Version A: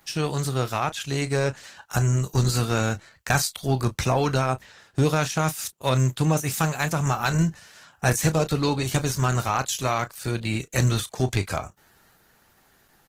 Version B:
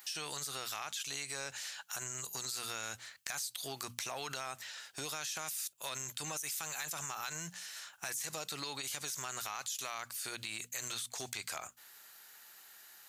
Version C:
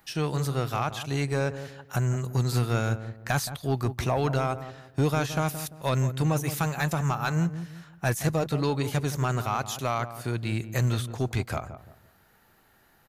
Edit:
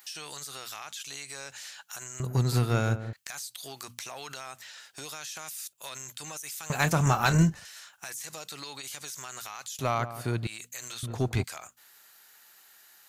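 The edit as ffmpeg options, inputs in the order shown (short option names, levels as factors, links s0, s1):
-filter_complex "[2:a]asplit=3[s0][s1][s2];[1:a]asplit=5[s3][s4][s5][s6][s7];[s3]atrim=end=2.202[s8];[s0]atrim=start=2.198:end=3.132[s9];[s4]atrim=start=3.128:end=6.702[s10];[0:a]atrim=start=6.698:end=7.652[s11];[s5]atrim=start=7.648:end=9.792[s12];[s1]atrim=start=9.788:end=10.472[s13];[s6]atrim=start=10.468:end=11.032[s14];[s2]atrim=start=11.028:end=11.442[s15];[s7]atrim=start=11.438[s16];[s8][s9]acrossfade=d=0.004:c1=hsin:c2=hsin[s17];[s17][s10]acrossfade=d=0.004:c1=hsin:c2=hsin[s18];[s18][s11]acrossfade=d=0.004:c1=hsin:c2=hsin[s19];[s19][s12]acrossfade=d=0.004:c1=hsin:c2=hsin[s20];[s20][s13]acrossfade=d=0.004:c1=hsin:c2=hsin[s21];[s21][s14]acrossfade=d=0.004:c1=hsin:c2=hsin[s22];[s22][s15]acrossfade=d=0.004:c1=hsin:c2=hsin[s23];[s23][s16]acrossfade=d=0.004:c1=hsin:c2=hsin"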